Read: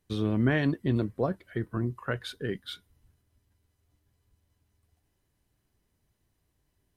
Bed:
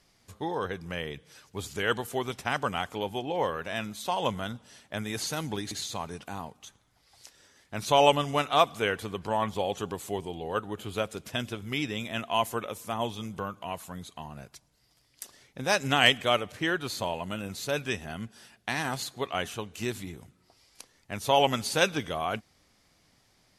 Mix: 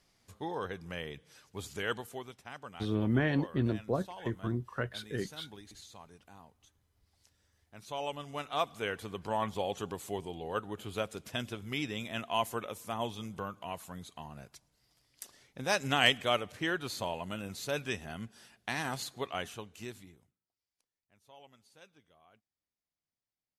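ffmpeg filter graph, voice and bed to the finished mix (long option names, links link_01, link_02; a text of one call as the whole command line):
ffmpeg -i stem1.wav -i stem2.wav -filter_complex "[0:a]adelay=2700,volume=-3.5dB[link_01];[1:a]volume=7dB,afade=type=out:start_time=1.77:duration=0.6:silence=0.266073,afade=type=in:start_time=8.09:duration=1.26:silence=0.237137,afade=type=out:start_time=19.17:duration=1.23:silence=0.0354813[link_02];[link_01][link_02]amix=inputs=2:normalize=0" out.wav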